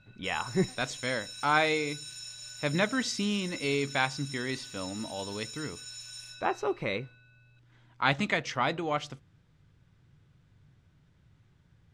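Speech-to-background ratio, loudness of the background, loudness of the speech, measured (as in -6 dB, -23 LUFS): 11.0 dB, -42.0 LUFS, -31.0 LUFS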